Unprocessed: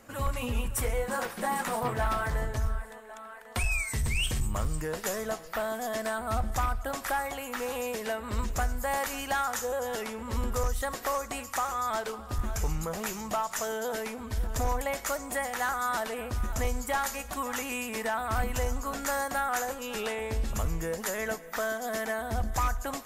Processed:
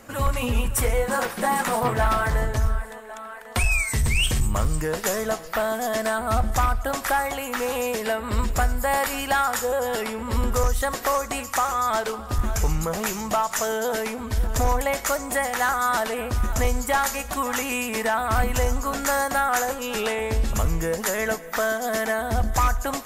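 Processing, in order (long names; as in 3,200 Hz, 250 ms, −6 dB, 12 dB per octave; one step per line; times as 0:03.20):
0:08.02–0:10.46: notch filter 6,200 Hz, Q 6.2
level +7.5 dB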